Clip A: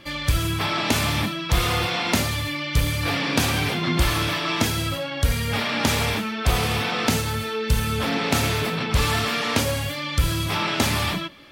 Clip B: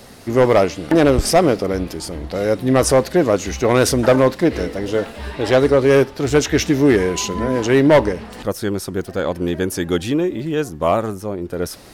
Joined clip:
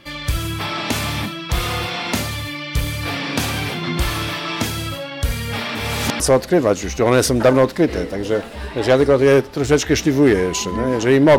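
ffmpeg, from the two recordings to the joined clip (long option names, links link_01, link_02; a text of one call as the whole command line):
ffmpeg -i cue0.wav -i cue1.wav -filter_complex "[0:a]apad=whole_dur=11.38,atrim=end=11.38,asplit=2[link_01][link_02];[link_01]atrim=end=5.752[link_03];[link_02]atrim=start=5.748:end=6.202,asetpts=PTS-STARTPTS,areverse[link_04];[1:a]atrim=start=2.828:end=8.01[link_05];[link_03][link_04]acrossfade=duration=0.004:curve1=hsin:curve2=hsin[link_06];[link_06][link_05]acrossfade=duration=0.004:curve1=hsin:curve2=hsin" out.wav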